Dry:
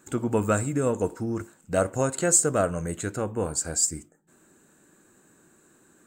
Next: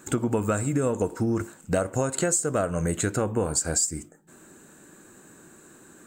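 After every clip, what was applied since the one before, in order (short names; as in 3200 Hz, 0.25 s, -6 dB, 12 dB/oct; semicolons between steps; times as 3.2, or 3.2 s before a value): compressor 10:1, threshold -29 dBFS, peak gain reduction 14.5 dB; gain +8 dB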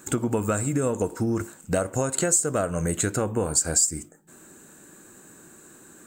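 high shelf 6400 Hz +6 dB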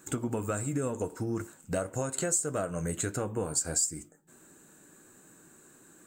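flange 1.5 Hz, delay 6 ms, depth 1.9 ms, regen -62%; gain -3 dB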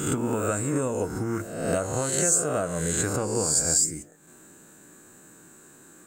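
spectral swells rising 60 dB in 0.92 s; gain +3 dB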